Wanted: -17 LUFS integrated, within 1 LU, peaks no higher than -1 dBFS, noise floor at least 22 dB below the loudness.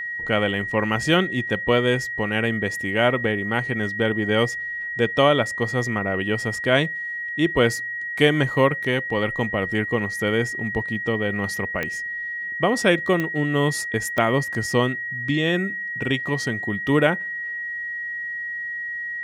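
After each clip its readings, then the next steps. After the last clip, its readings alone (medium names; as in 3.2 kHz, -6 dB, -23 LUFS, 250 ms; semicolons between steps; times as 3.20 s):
clicks found 4; steady tone 1.9 kHz; tone level -27 dBFS; loudness -22.5 LUFS; peak level -3.5 dBFS; loudness target -17.0 LUFS
-> de-click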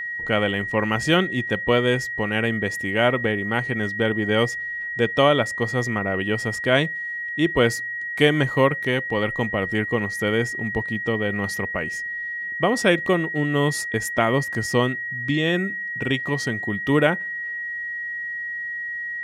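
clicks found 1; steady tone 1.9 kHz; tone level -27 dBFS
-> band-stop 1.9 kHz, Q 30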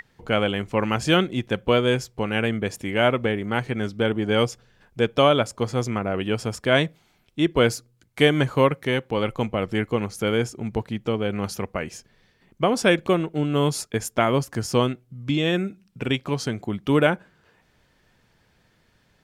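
steady tone not found; loudness -23.5 LUFS; peak level -4.0 dBFS; loudness target -17.0 LUFS
-> trim +6.5 dB; peak limiter -1 dBFS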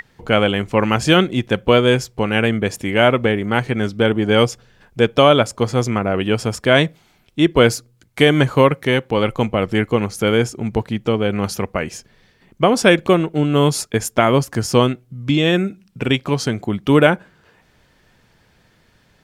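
loudness -17.0 LUFS; peak level -1.0 dBFS; noise floor -57 dBFS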